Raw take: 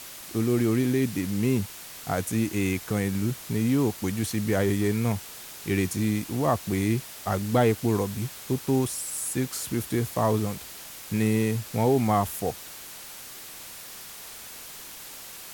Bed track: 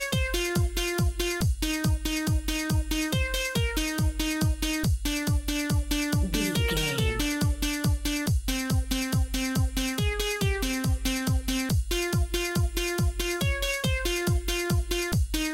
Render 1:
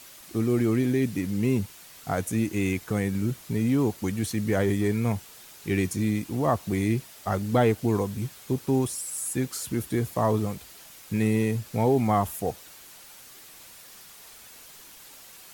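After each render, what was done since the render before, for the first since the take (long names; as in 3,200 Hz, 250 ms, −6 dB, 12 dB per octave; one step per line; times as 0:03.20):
broadband denoise 7 dB, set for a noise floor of −42 dBFS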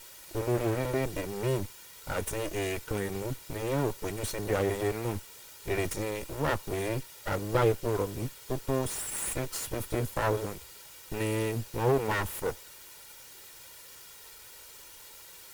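lower of the sound and its delayed copy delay 2.1 ms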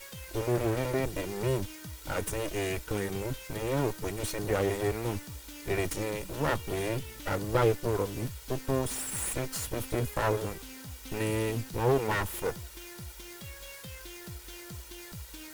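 mix in bed track −19 dB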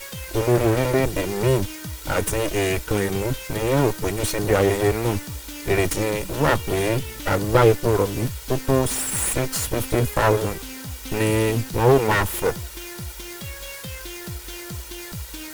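level +10 dB
brickwall limiter −3 dBFS, peak gain reduction 1 dB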